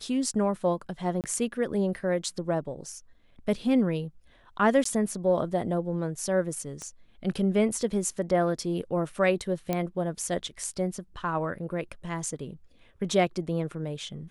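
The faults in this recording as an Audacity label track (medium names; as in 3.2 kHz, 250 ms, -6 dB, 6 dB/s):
1.210000	1.240000	dropout 28 ms
4.840000	4.850000	dropout 14 ms
6.820000	6.820000	pop -25 dBFS
9.730000	9.730000	pop -14 dBFS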